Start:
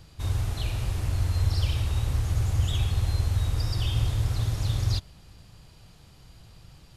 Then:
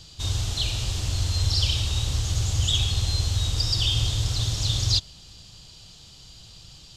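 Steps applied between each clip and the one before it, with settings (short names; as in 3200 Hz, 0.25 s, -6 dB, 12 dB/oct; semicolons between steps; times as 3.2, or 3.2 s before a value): band shelf 4800 Hz +13.5 dB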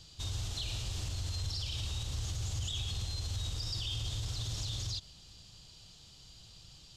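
limiter -20.5 dBFS, peak gain reduction 10.5 dB; gain -8 dB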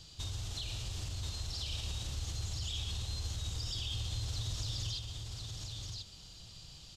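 compressor, threshold -37 dBFS, peak gain reduction 5.5 dB; echo 1.032 s -3.5 dB; gain +1 dB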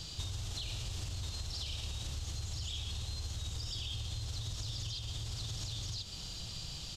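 compressor 12:1, threshold -45 dBFS, peak gain reduction 12.5 dB; gain +9 dB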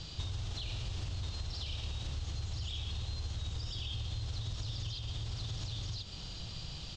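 air absorption 120 m; gain +2 dB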